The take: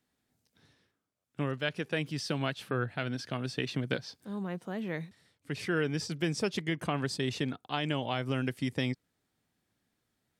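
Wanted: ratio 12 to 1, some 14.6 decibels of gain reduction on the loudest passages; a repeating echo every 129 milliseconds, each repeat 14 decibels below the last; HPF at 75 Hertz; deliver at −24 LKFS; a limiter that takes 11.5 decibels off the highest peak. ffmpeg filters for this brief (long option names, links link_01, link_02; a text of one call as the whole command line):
ffmpeg -i in.wav -af "highpass=75,acompressor=threshold=-41dB:ratio=12,alimiter=level_in=13.5dB:limit=-24dB:level=0:latency=1,volume=-13.5dB,aecho=1:1:129|258:0.2|0.0399,volume=25dB" out.wav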